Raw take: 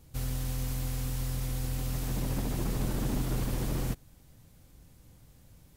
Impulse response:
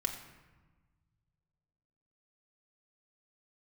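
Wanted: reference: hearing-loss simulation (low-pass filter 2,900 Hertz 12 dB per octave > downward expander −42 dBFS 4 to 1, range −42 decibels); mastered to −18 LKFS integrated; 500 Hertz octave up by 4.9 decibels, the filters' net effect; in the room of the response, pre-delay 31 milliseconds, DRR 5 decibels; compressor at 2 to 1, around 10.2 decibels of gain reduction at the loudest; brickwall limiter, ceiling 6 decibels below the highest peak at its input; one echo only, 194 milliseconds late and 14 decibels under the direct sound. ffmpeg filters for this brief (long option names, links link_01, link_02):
-filter_complex "[0:a]equalizer=frequency=500:width_type=o:gain=6,acompressor=threshold=-45dB:ratio=2,alimiter=level_in=10.5dB:limit=-24dB:level=0:latency=1,volume=-10.5dB,aecho=1:1:194:0.2,asplit=2[link_01][link_02];[1:a]atrim=start_sample=2205,adelay=31[link_03];[link_02][link_03]afir=irnorm=-1:irlink=0,volume=-7.5dB[link_04];[link_01][link_04]amix=inputs=2:normalize=0,lowpass=2900,agate=range=-42dB:threshold=-42dB:ratio=4,volume=27dB"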